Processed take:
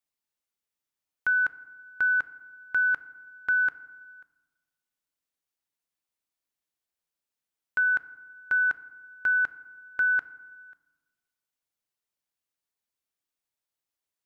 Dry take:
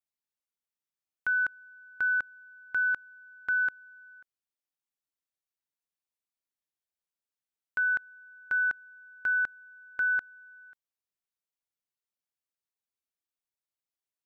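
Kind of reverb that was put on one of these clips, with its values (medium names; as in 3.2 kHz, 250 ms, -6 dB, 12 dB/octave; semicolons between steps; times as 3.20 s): FDN reverb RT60 1.3 s, low-frequency decay 1.3×, high-frequency decay 0.45×, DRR 14 dB; trim +3.5 dB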